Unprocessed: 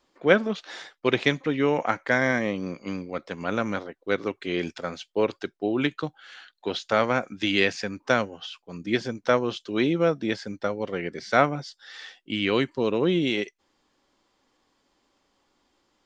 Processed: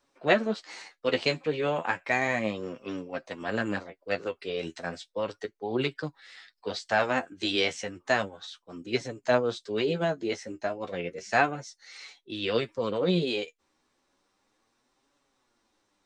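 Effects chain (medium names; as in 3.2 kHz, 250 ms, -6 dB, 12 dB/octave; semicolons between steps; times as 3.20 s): formant shift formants +3 st; flange 0.33 Hz, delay 6.9 ms, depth 6.2 ms, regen +30%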